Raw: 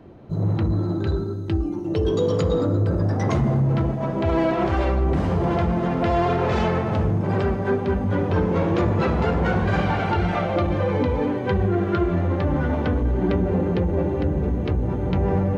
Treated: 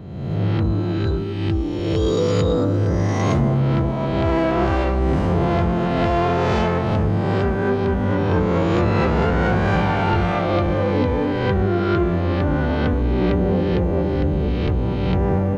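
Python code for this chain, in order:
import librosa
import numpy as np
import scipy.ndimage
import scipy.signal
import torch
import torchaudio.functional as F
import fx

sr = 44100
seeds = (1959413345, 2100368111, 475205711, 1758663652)

y = fx.spec_swells(x, sr, rise_s=1.28)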